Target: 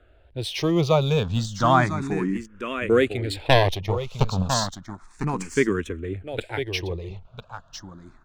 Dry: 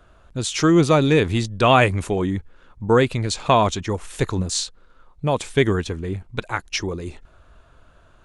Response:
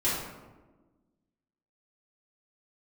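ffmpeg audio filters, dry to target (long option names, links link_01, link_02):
-filter_complex "[0:a]adynamicsmooth=sensitivity=7:basefreq=4900,asettb=1/sr,asplit=3[link_01][link_02][link_03];[link_01]atrim=end=1.544[link_04];[link_02]atrim=start=1.54:end=2.22,asetpts=PTS-STARTPTS,afade=type=in:duration=0.004:curve=qsin,afade=type=out:start_time=0.676:duration=0.004:curve=qsin,highshelf=frequency=9300:gain=-9.5[link_05];[link_03]atrim=start=2.216[link_06];[link_04][link_05]acrossfade=duration=0.004:curve1=hsin:curve2=qsin[link_07];[link_07][link_06]acrossfade=duration=0.004:curve1=qsin:curve2=hsin,asettb=1/sr,asplit=3[link_08][link_09][link_10];[link_08]atrim=end=3.354[link_11];[link_09]atrim=start=3.35:end=4.54,asetpts=PTS-STARTPTS,afade=type=in:duration=0.004:curve=qsin,afade=type=out:start_time=1.186:duration=0.004:curve=qsin,aeval=exprs='0.75*(cos(1*acos(clip(val(0)/0.75,-1,1)))-cos(1*PI/2))+0.335*(cos(4*acos(clip(val(0)/0.75,-1,1)))-cos(4*PI/2))':channel_layout=same[link_12];[link_10]atrim=start=4.536[link_13];[link_11][link_12]acrossfade=duration=0.004:curve1=hsin:curve2=qsin[link_14];[link_14][link_13]acrossfade=duration=0.004:curve1=qsin:curve2=hsin,asplit=2[link_15][link_16];[link_16]aecho=0:1:1002:0.355[link_17];[link_15][link_17]amix=inputs=2:normalize=0,asplit=2[link_18][link_19];[link_19]afreqshift=0.32[link_20];[link_18][link_20]amix=inputs=2:normalize=1,volume=-1dB"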